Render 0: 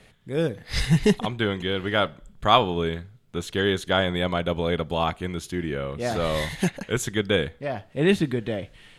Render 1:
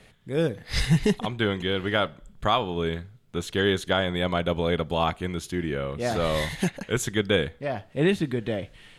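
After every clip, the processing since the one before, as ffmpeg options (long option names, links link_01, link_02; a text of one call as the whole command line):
ffmpeg -i in.wav -af "alimiter=limit=-11dB:level=0:latency=1:release=391" out.wav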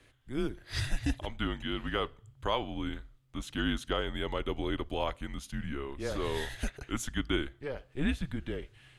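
ffmpeg -i in.wav -af "afreqshift=-140,volume=-8dB" out.wav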